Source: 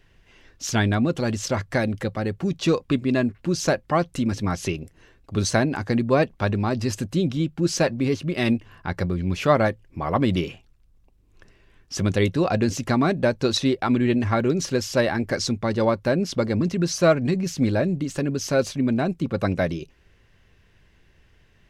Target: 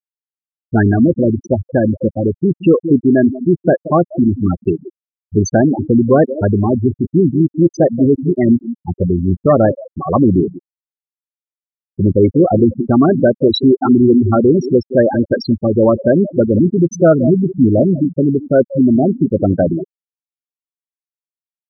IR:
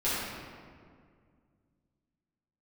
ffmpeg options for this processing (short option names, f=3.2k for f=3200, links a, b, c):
-filter_complex "[0:a]equalizer=f=340:t=o:w=1.3:g=5.5,asplit=2[a][b];[b]adelay=178,lowpass=f=2.5k:p=1,volume=-12.5dB,asplit=2[c][d];[d]adelay=178,lowpass=f=2.5k:p=1,volume=0.18[e];[a][c][e]amix=inputs=3:normalize=0,asplit=2[f][g];[g]aeval=exprs='0.75*sin(PI/2*2.51*val(0)/0.75)':c=same,volume=-7.5dB[h];[f][h]amix=inputs=2:normalize=0,afftfilt=real='re*gte(hypot(re,im),0.631)':imag='im*gte(hypot(re,im),0.631)':win_size=1024:overlap=0.75"